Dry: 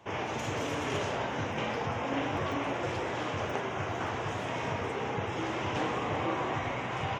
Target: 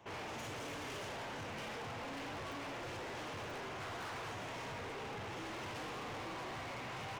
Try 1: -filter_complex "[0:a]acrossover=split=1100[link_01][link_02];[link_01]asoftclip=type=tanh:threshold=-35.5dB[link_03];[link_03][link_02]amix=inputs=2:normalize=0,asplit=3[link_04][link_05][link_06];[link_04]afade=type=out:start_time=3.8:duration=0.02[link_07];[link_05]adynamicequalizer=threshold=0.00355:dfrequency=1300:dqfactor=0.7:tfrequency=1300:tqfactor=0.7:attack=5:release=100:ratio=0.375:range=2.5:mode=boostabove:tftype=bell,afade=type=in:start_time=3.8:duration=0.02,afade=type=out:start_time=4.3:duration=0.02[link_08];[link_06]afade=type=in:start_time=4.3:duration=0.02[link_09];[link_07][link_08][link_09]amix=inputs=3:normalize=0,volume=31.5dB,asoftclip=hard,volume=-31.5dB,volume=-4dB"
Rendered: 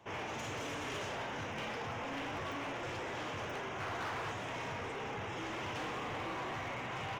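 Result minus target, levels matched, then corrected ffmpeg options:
gain into a clipping stage and back: distortion −9 dB
-filter_complex "[0:a]acrossover=split=1100[link_01][link_02];[link_01]asoftclip=type=tanh:threshold=-35.5dB[link_03];[link_03][link_02]amix=inputs=2:normalize=0,asplit=3[link_04][link_05][link_06];[link_04]afade=type=out:start_time=3.8:duration=0.02[link_07];[link_05]adynamicequalizer=threshold=0.00355:dfrequency=1300:dqfactor=0.7:tfrequency=1300:tqfactor=0.7:attack=5:release=100:ratio=0.375:range=2.5:mode=boostabove:tftype=bell,afade=type=in:start_time=3.8:duration=0.02,afade=type=out:start_time=4.3:duration=0.02[link_08];[link_06]afade=type=in:start_time=4.3:duration=0.02[link_09];[link_07][link_08][link_09]amix=inputs=3:normalize=0,volume=38.5dB,asoftclip=hard,volume=-38.5dB,volume=-4dB"

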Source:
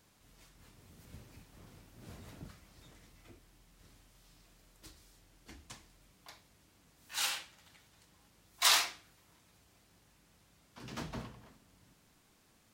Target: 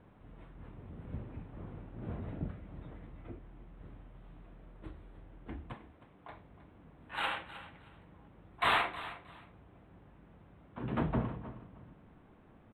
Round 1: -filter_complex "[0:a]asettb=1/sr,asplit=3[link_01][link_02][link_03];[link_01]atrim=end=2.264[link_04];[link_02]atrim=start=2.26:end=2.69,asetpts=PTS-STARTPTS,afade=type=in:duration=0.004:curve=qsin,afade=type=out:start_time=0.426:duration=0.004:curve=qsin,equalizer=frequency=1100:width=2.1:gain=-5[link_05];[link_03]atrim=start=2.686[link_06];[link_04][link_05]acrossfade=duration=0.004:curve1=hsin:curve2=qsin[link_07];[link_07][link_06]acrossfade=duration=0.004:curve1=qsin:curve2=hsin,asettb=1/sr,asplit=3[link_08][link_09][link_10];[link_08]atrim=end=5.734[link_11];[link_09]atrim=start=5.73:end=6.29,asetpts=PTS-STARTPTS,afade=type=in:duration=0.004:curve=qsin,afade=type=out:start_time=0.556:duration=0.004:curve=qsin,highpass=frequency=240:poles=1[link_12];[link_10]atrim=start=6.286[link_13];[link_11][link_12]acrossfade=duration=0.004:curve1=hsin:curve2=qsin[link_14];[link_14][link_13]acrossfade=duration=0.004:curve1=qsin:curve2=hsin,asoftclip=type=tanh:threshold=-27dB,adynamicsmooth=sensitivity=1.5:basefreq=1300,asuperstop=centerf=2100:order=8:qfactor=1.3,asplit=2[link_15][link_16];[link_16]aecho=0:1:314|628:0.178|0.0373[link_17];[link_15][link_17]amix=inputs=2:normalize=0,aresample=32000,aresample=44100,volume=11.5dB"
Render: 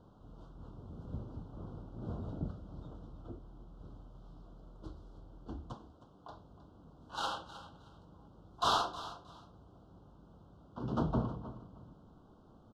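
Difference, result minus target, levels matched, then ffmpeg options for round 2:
2,000 Hz band −10.0 dB
-filter_complex "[0:a]asettb=1/sr,asplit=3[link_01][link_02][link_03];[link_01]atrim=end=2.264[link_04];[link_02]atrim=start=2.26:end=2.69,asetpts=PTS-STARTPTS,afade=type=in:duration=0.004:curve=qsin,afade=type=out:start_time=0.426:duration=0.004:curve=qsin,equalizer=frequency=1100:width=2.1:gain=-5[link_05];[link_03]atrim=start=2.686[link_06];[link_04][link_05]acrossfade=duration=0.004:curve1=hsin:curve2=qsin[link_07];[link_07][link_06]acrossfade=duration=0.004:curve1=qsin:curve2=hsin,asettb=1/sr,asplit=3[link_08][link_09][link_10];[link_08]atrim=end=5.734[link_11];[link_09]atrim=start=5.73:end=6.29,asetpts=PTS-STARTPTS,afade=type=in:duration=0.004:curve=qsin,afade=type=out:start_time=0.556:duration=0.004:curve=qsin,highpass=frequency=240:poles=1[link_12];[link_10]atrim=start=6.286[link_13];[link_11][link_12]acrossfade=duration=0.004:curve1=hsin:curve2=qsin[link_14];[link_14][link_13]acrossfade=duration=0.004:curve1=qsin:curve2=hsin,asoftclip=type=tanh:threshold=-27dB,adynamicsmooth=sensitivity=1.5:basefreq=1300,asuperstop=centerf=5600:order=8:qfactor=1.3,asplit=2[link_15][link_16];[link_16]aecho=0:1:314|628:0.178|0.0373[link_17];[link_15][link_17]amix=inputs=2:normalize=0,aresample=32000,aresample=44100,volume=11.5dB"

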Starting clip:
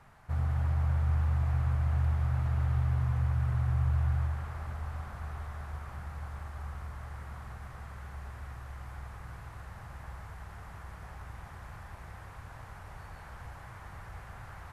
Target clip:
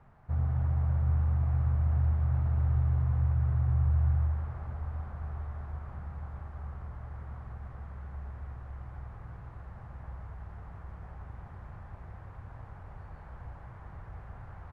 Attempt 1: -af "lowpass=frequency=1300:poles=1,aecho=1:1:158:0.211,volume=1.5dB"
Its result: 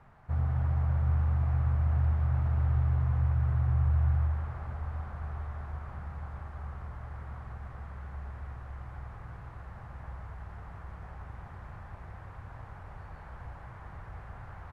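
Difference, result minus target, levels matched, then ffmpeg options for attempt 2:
1,000 Hz band +3.0 dB
-af "lowpass=frequency=640:poles=1,aecho=1:1:158:0.211,volume=1.5dB"

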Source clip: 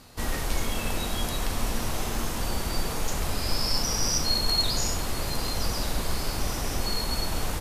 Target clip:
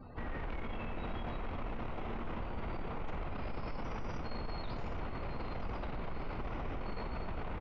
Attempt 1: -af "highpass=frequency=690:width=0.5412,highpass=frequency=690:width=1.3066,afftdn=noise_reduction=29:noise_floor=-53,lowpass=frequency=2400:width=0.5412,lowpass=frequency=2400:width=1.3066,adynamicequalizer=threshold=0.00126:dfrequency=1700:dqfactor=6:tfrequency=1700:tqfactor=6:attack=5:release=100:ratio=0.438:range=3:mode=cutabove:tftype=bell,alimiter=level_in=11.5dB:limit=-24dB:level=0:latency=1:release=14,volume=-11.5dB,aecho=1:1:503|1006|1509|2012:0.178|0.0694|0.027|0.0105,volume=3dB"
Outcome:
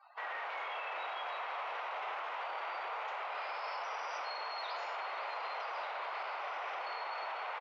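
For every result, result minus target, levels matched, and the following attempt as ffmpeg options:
echo 315 ms early; 500 Hz band −3.0 dB
-af "highpass=frequency=690:width=0.5412,highpass=frequency=690:width=1.3066,afftdn=noise_reduction=29:noise_floor=-53,lowpass=frequency=2400:width=0.5412,lowpass=frequency=2400:width=1.3066,adynamicequalizer=threshold=0.00126:dfrequency=1700:dqfactor=6:tfrequency=1700:tqfactor=6:attack=5:release=100:ratio=0.438:range=3:mode=cutabove:tftype=bell,alimiter=level_in=11.5dB:limit=-24dB:level=0:latency=1:release=14,volume=-11.5dB,aecho=1:1:818|1636|2454|3272:0.178|0.0694|0.027|0.0105,volume=3dB"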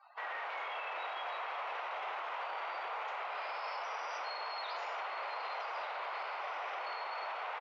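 500 Hz band −3.0 dB
-af "afftdn=noise_reduction=29:noise_floor=-53,lowpass=frequency=2400:width=0.5412,lowpass=frequency=2400:width=1.3066,adynamicequalizer=threshold=0.00126:dfrequency=1700:dqfactor=6:tfrequency=1700:tqfactor=6:attack=5:release=100:ratio=0.438:range=3:mode=cutabove:tftype=bell,alimiter=level_in=11.5dB:limit=-24dB:level=0:latency=1:release=14,volume=-11.5dB,aecho=1:1:818|1636|2454|3272:0.178|0.0694|0.027|0.0105,volume=3dB"

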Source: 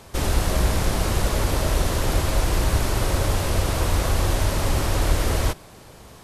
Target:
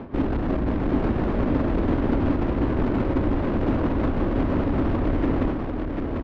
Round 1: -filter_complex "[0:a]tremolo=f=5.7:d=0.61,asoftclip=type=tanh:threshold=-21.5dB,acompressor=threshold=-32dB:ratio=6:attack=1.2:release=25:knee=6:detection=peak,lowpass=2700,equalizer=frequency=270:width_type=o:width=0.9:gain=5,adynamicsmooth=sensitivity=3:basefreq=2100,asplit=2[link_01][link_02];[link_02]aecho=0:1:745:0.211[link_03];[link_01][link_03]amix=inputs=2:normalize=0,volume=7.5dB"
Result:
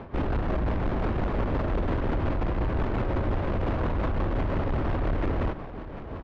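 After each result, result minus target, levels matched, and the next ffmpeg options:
echo-to-direct −9.5 dB; soft clipping: distortion +9 dB; 250 Hz band −4.5 dB
-filter_complex "[0:a]tremolo=f=5.7:d=0.61,asoftclip=type=tanh:threshold=-21.5dB,acompressor=threshold=-32dB:ratio=6:attack=1.2:release=25:knee=6:detection=peak,lowpass=2700,equalizer=frequency=270:width_type=o:width=0.9:gain=5,adynamicsmooth=sensitivity=3:basefreq=2100,asplit=2[link_01][link_02];[link_02]aecho=0:1:745:0.631[link_03];[link_01][link_03]amix=inputs=2:normalize=0,volume=7.5dB"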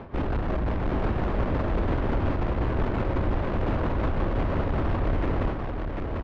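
soft clipping: distortion +9 dB; 250 Hz band −4.0 dB
-filter_complex "[0:a]tremolo=f=5.7:d=0.61,asoftclip=type=tanh:threshold=-14dB,acompressor=threshold=-32dB:ratio=6:attack=1.2:release=25:knee=6:detection=peak,lowpass=2700,equalizer=frequency=270:width_type=o:width=0.9:gain=5,adynamicsmooth=sensitivity=3:basefreq=2100,asplit=2[link_01][link_02];[link_02]aecho=0:1:745:0.631[link_03];[link_01][link_03]amix=inputs=2:normalize=0,volume=7.5dB"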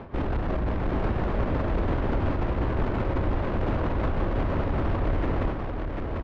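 250 Hz band −4.0 dB
-filter_complex "[0:a]tremolo=f=5.7:d=0.61,asoftclip=type=tanh:threshold=-14dB,acompressor=threshold=-32dB:ratio=6:attack=1.2:release=25:knee=6:detection=peak,lowpass=2700,equalizer=frequency=270:width_type=o:width=0.9:gain=15.5,adynamicsmooth=sensitivity=3:basefreq=2100,asplit=2[link_01][link_02];[link_02]aecho=0:1:745:0.631[link_03];[link_01][link_03]amix=inputs=2:normalize=0,volume=7.5dB"

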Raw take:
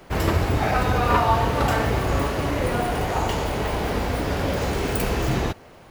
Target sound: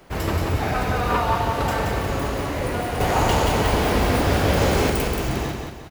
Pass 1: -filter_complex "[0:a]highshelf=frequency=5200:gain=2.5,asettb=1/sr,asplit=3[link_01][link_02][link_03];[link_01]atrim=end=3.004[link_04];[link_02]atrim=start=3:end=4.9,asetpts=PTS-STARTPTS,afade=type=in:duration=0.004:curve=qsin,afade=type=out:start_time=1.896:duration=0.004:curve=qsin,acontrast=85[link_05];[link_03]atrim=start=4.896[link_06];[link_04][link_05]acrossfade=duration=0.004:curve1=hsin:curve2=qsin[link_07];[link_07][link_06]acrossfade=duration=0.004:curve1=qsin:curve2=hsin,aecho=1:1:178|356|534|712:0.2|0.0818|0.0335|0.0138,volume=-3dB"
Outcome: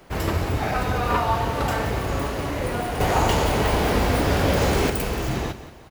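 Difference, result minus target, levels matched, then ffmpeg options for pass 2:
echo-to-direct −9 dB
-filter_complex "[0:a]highshelf=frequency=5200:gain=2.5,asettb=1/sr,asplit=3[link_01][link_02][link_03];[link_01]atrim=end=3.004[link_04];[link_02]atrim=start=3:end=4.9,asetpts=PTS-STARTPTS,afade=type=in:duration=0.004:curve=qsin,afade=type=out:start_time=1.896:duration=0.004:curve=qsin,acontrast=85[link_05];[link_03]atrim=start=4.896[link_06];[link_04][link_05]acrossfade=duration=0.004:curve1=hsin:curve2=qsin[link_07];[link_07][link_06]acrossfade=duration=0.004:curve1=qsin:curve2=hsin,aecho=1:1:178|356|534|712|890:0.562|0.231|0.0945|0.0388|0.0159,volume=-3dB"

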